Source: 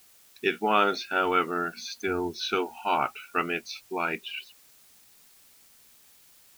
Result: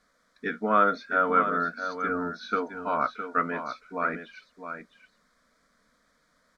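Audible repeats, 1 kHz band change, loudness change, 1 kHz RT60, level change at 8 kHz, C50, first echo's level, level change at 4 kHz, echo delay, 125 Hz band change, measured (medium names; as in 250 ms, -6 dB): 1, +1.5 dB, +1.0 dB, no reverb, under -10 dB, no reverb, -9.0 dB, -12.5 dB, 662 ms, +1.0 dB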